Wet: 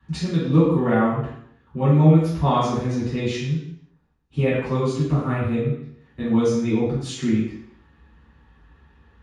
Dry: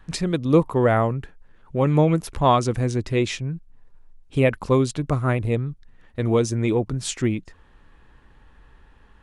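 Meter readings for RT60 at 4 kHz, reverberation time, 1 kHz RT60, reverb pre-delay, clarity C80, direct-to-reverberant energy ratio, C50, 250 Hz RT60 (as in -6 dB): 0.70 s, 0.70 s, 0.70 s, 3 ms, 4.0 dB, -12.0 dB, 0.5 dB, 0.70 s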